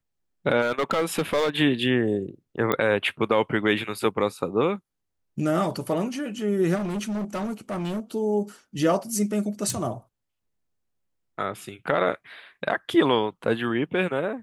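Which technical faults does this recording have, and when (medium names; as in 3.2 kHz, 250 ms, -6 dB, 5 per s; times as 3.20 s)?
0.61–1.58 s: clipped -18.5 dBFS
2.72 s: pop -10 dBFS
6.75–8.00 s: clipped -25.5 dBFS
9.70 s: pop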